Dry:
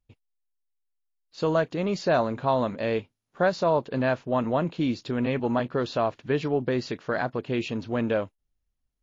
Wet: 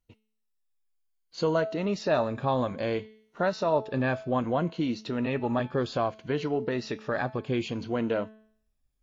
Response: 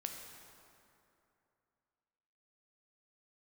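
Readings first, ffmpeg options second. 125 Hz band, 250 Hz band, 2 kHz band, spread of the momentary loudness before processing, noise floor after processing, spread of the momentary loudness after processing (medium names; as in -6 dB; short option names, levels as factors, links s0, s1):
-1.5 dB, -2.0 dB, -2.5 dB, 5 LU, -77 dBFS, 5 LU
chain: -filter_complex "[0:a]afftfilt=real='re*pow(10,8/40*sin(2*PI*(1.9*log(max(b,1)*sr/1024/100)/log(2)-(-0.62)*(pts-256)/sr)))':imag='im*pow(10,8/40*sin(2*PI*(1.9*log(max(b,1)*sr/1024/100)/log(2)-(-0.62)*(pts-256)/sr)))':win_size=1024:overlap=0.75,bandreject=f=217.2:t=h:w=4,bandreject=f=434.4:t=h:w=4,bandreject=f=651.6:t=h:w=4,bandreject=f=868.8:t=h:w=4,bandreject=f=1086:t=h:w=4,bandreject=f=1303.2:t=h:w=4,bandreject=f=1520.4:t=h:w=4,bandreject=f=1737.6:t=h:w=4,bandreject=f=1954.8:t=h:w=4,bandreject=f=2172:t=h:w=4,bandreject=f=2389.2:t=h:w=4,bandreject=f=2606.4:t=h:w=4,bandreject=f=2823.6:t=h:w=4,bandreject=f=3040.8:t=h:w=4,bandreject=f=3258:t=h:w=4,bandreject=f=3475.2:t=h:w=4,bandreject=f=3692.4:t=h:w=4,bandreject=f=3909.6:t=h:w=4,bandreject=f=4126.8:t=h:w=4,bandreject=f=4344:t=h:w=4,bandreject=f=4561.2:t=h:w=4,bandreject=f=4778.4:t=h:w=4,bandreject=f=4995.6:t=h:w=4,bandreject=f=5212.8:t=h:w=4,bandreject=f=5430:t=h:w=4,bandreject=f=5647.2:t=h:w=4,bandreject=f=5864.4:t=h:w=4,bandreject=f=6081.6:t=h:w=4,bandreject=f=6298.8:t=h:w=4,bandreject=f=6516:t=h:w=4,bandreject=f=6733.2:t=h:w=4,asplit=2[s0][s1];[s1]acompressor=threshold=0.0178:ratio=6,volume=0.944[s2];[s0][s2]amix=inputs=2:normalize=0,volume=0.596"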